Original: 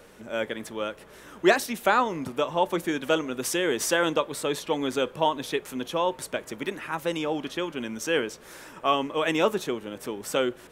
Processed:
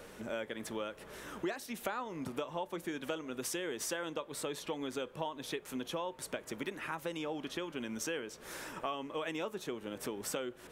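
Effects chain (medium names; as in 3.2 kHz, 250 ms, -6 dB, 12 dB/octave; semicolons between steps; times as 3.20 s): compression 6:1, threshold -36 dBFS, peak gain reduction 20.5 dB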